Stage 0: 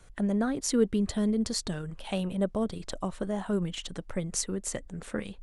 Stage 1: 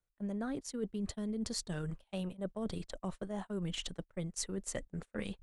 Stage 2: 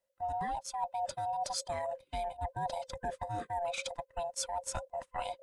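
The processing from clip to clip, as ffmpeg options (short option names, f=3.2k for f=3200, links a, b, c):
-af "areverse,acompressor=threshold=-36dB:ratio=8,areverse,agate=range=-32dB:threshold=-41dB:ratio=16:detection=peak,volume=1dB"
-af "afftfilt=real='real(if(lt(b,1008),b+24*(1-2*mod(floor(b/24),2)),b),0)':imag='imag(if(lt(b,1008),b+24*(1-2*mod(floor(b/24),2)),b),0)':win_size=2048:overlap=0.75,volume=2dB"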